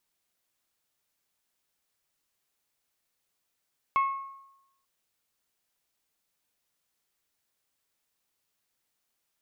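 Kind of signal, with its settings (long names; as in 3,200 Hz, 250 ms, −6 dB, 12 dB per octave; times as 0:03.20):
struck glass bell, lowest mode 1,090 Hz, decay 0.89 s, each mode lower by 11.5 dB, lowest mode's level −19.5 dB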